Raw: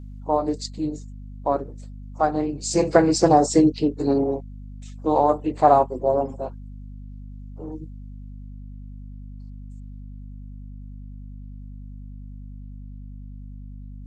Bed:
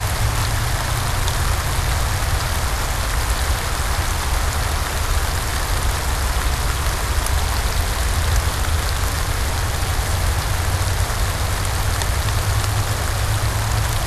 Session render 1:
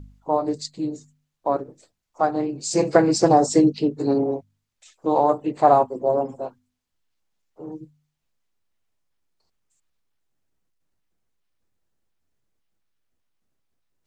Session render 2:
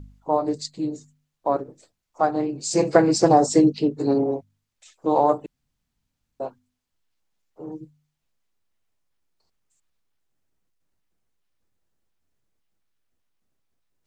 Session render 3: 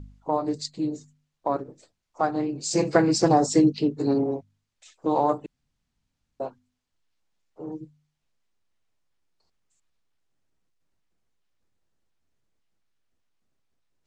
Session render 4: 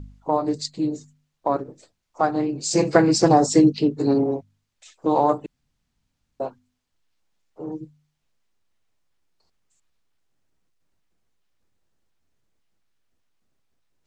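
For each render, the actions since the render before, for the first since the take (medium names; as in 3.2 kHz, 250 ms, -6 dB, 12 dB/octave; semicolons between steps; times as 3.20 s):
de-hum 50 Hz, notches 5
5.46–6.40 s: room tone
low-pass 8.1 kHz 12 dB/octave; dynamic bell 590 Hz, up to -5 dB, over -28 dBFS, Q 0.91
trim +3.5 dB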